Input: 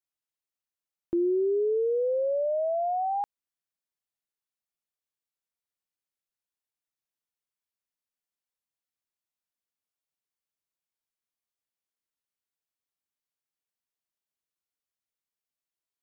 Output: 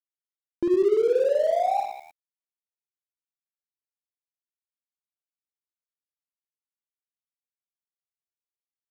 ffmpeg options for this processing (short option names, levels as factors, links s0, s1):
-af "areverse,acompressor=mode=upward:threshold=0.00562:ratio=2.5,areverse,atempo=1.8,aecho=1:1:50|115|199.5|309.4|452.2:0.631|0.398|0.251|0.158|0.1,aeval=exprs='sgn(val(0))*max(abs(val(0))-0.0075,0)':c=same,volume=1.5"